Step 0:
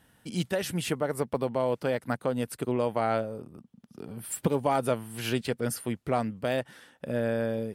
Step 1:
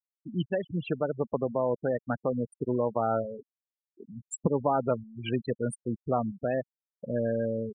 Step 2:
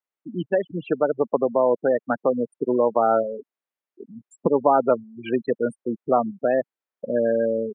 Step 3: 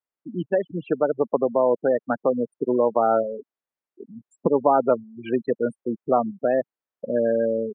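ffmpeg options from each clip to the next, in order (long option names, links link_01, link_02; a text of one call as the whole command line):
ffmpeg -i in.wav -af "afftfilt=real='re*gte(hypot(re,im),0.0631)':imag='im*gte(hypot(re,im),0.0631)':win_size=1024:overlap=0.75" out.wav
ffmpeg -i in.wav -filter_complex "[0:a]acrossover=split=220 2700:gain=0.0708 1 0.2[link_01][link_02][link_03];[link_01][link_02][link_03]amix=inputs=3:normalize=0,acrossover=split=2600[link_04][link_05];[link_05]acompressor=threshold=-59dB:ratio=4:attack=1:release=60[link_06];[link_04][link_06]amix=inputs=2:normalize=0,volume=9dB" out.wav
ffmpeg -i in.wav -af "highshelf=frequency=3000:gain=-9.5" out.wav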